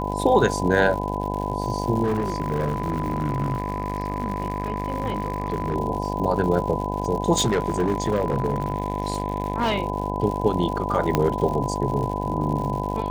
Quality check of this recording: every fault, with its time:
mains buzz 50 Hz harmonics 20 −28 dBFS
surface crackle 130 per second −30 dBFS
whistle 1,000 Hz −31 dBFS
0:02.03–0:05.76: clipping −19 dBFS
0:07.36–0:09.78: clipping −16.5 dBFS
0:11.15: click −6 dBFS

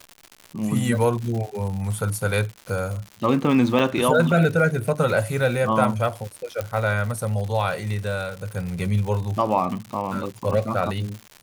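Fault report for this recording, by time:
surface crackle 190 per second −30 dBFS
0:03.79–0:03.80: drop-out 5.2 ms
0:06.61: click −13 dBFS

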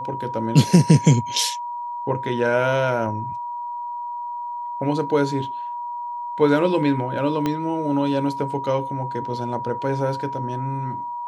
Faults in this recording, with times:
whistle 960 Hz −27 dBFS
0:07.46: click −10 dBFS

